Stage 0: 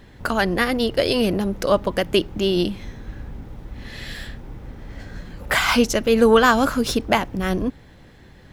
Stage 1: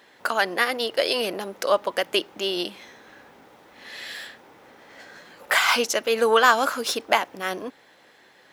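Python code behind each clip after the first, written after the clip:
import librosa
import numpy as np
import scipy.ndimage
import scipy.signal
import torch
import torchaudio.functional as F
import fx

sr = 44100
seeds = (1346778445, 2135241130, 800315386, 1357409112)

y = scipy.signal.sosfilt(scipy.signal.butter(2, 550.0, 'highpass', fs=sr, output='sos'), x)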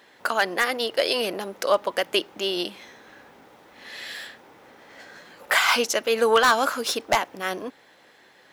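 y = 10.0 ** (-8.5 / 20.0) * (np.abs((x / 10.0 ** (-8.5 / 20.0) + 3.0) % 4.0 - 2.0) - 1.0)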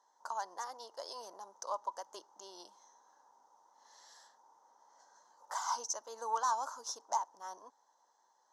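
y = fx.double_bandpass(x, sr, hz=2400.0, octaves=2.7)
y = y * librosa.db_to_amplitude(-5.0)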